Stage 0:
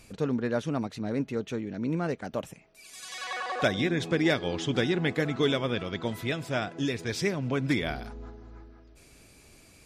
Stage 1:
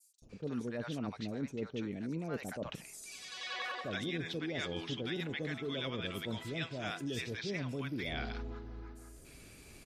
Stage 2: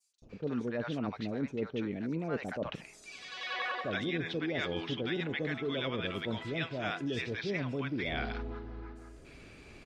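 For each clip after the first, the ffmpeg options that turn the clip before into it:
ffmpeg -i in.wav -filter_complex "[0:a]adynamicequalizer=threshold=0.00562:dfrequency=3400:dqfactor=1:tfrequency=3400:tqfactor=1:attack=5:release=100:ratio=0.375:range=2.5:mode=boostabove:tftype=bell,areverse,acompressor=threshold=-36dB:ratio=6,areverse,acrossover=split=760|5900[link_01][link_02][link_03];[link_01]adelay=220[link_04];[link_02]adelay=290[link_05];[link_04][link_05][link_03]amix=inputs=3:normalize=0,volume=1dB" out.wav
ffmpeg -i in.wav -af "lowpass=6400,bass=frequency=250:gain=-3,treble=frequency=4000:gain=-9,volume=5dB" out.wav

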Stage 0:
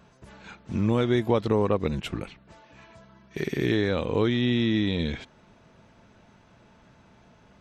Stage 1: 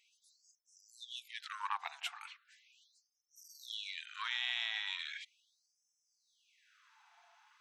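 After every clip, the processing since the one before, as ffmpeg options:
ffmpeg -i in.wav -af "bandreject=frequency=130:width_type=h:width=4,bandreject=frequency=260:width_type=h:width=4,bandreject=frequency=390:width_type=h:width=4,bandreject=frequency=520:width_type=h:width=4,bandreject=frequency=650:width_type=h:width=4,bandreject=frequency=780:width_type=h:width=4,bandreject=frequency=910:width_type=h:width=4,bandreject=frequency=1040:width_type=h:width=4,bandreject=frequency=1170:width_type=h:width=4,bandreject=frequency=1300:width_type=h:width=4,bandreject=frequency=1430:width_type=h:width=4,bandreject=frequency=1560:width_type=h:width=4,aeval=exprs='0.355*(cos(1*acos(clip(val(0)/0.355,-1,1)))-cos(1*PI/2))+0.0355*(cos(4*acos(clip(val(0)/0.355,-1,1)))-cos(4*PI/2))':channel_layout=same,afftfilt=real='re*gte(b*sr/1024,660*pow(5200/660,0.5+0.5*sin(2*PI*0.38*pts/sr)))':imag='im*gte(b*sr/1024,660*pow(5200/660,0.5+0.5*sin(2*PI*0.38*pts/sr)))':win_size=1024:overlap=0.75,volume=-4dB" out.wav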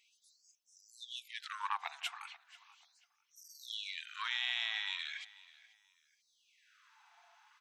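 ffmpeg -i in.wav -filter_complex "[0:a]asplit=2[link_01][link_02];[link_02]adelay=486,lowpass=frequency=4900:poles=1,volume=-19dB,asplit=2[link_03][link_04];[link_04]adelay=486,lowpass=frequency=4900:poles=1,volume=0.29[link_05];[link_01][link_03][link_05]amix=inputs=3:normalize=0,volume=1dB" out.wav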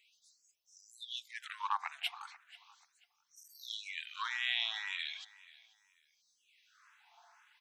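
ffmpeg -i in.wav -filter_complex "[0:a]asplit=2[link_01][link_02];[link_02]afreqshift=2[link_03];[link_01][link_03]amix=inputs=2:normalize=1,volume=3.5dB" out.wav

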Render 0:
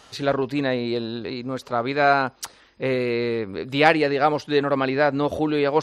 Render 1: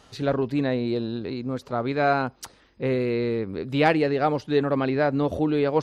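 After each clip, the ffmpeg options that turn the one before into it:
ffmpeg -i in.wav -af "lowshelf=frequency=450:gain=9.5,volume=-6.5dB" out.wav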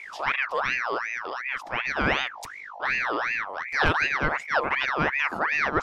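ffmpeg -i in.wav -af "aeval=exprs='val(0)+0.0141*(sin(2*PI*50*n/s)+sin(2*PI*2*50*n/s)/2+sin(2*PI*3*50*n/s)/3+sin(2*PI*4*50*n/s)/4+sin(2*PI*5*50*n/s)/5)':channel_layout=same,aeval=exprs='val(0)*sin(2*PI*1500*n/s+1500*0.5/2.7*sin(2*PI*2.7*n/s))':channel_layout=same" out.wav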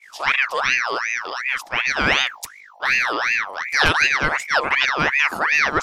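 ffmpeg -i in.wav -af "agate=range=-33dB:threshold=-32dB:ratio=3:detection=peak,crystalizer=i=5:c=0,volume=2dB" out.wav

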